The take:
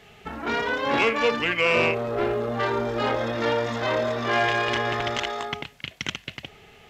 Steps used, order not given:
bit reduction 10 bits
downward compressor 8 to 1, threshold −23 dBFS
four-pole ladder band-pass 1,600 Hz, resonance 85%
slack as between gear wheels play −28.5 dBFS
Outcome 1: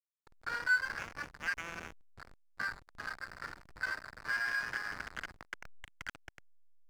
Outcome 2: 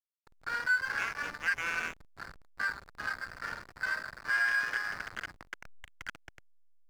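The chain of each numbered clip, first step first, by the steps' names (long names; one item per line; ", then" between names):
bit reduction, then downward compressor, then four-pole ladder band-pass, then slack as between gear wheels
four-pole ladder band-pass, then bit reduction, then slack as between gear wheels, then downward compressor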